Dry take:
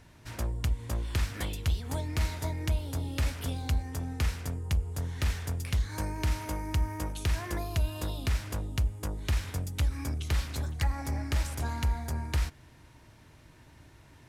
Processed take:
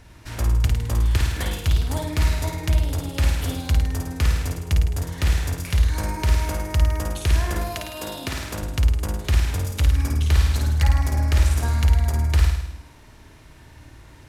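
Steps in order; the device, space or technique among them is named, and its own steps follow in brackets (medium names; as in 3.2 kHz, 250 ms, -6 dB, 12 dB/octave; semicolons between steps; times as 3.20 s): 7.75–8.61 s: high-pass 310 Hz -> 97 Hz 12 dB/octave; low shelf boost with a cut just above (bass shelf 69 Hz +5 dB; peaking EQ 150 Hz -4 dB 0.77 oct); flutter echo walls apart 9.1 m, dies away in 0.82 s; trim +6 dB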